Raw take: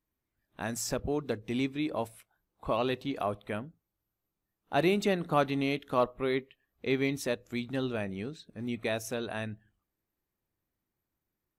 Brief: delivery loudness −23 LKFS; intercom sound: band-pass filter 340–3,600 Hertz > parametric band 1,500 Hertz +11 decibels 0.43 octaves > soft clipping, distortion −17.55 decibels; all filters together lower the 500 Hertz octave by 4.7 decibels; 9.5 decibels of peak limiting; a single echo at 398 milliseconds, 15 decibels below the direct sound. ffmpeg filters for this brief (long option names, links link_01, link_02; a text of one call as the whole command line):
ffmpeg -i in.wav -af "equalizer=frequency=500:width_type=o:gain=-5,alimiter=level_in=0.5dB:limit=-24dB:level=0:latency=1,volume=-0.5dB,highpass=340,lowpass=3600,equalizer=frequency=1500:width_type=o:width=0.43:gain=11,aecho=1:1:398:0.178,asoftclip=threshold=-25.5dB,volume=16dB" out.wav